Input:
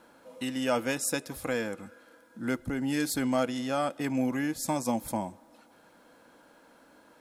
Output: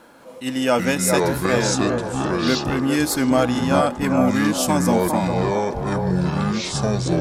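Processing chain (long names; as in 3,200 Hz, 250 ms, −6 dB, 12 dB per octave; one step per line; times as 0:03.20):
delay with pitch and tempo change per echo 202 ms, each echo −6 semitones, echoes 2
delay with a band-pass on its return 406 ms, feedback 46%, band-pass 660 Hz, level −4 dB
level that may rise only so fast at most 210 dB per second
level +9 dB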